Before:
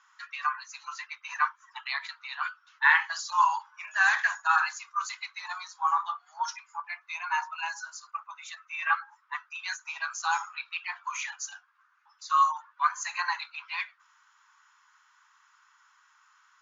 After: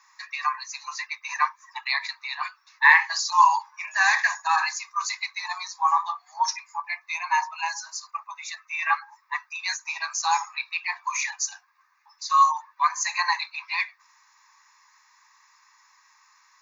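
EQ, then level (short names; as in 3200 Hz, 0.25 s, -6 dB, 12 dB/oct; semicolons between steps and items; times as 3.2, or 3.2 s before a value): high shelf 4700 Hz +7.5 dB; fixed phaser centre 2100 Hz, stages 8; +7.0 dB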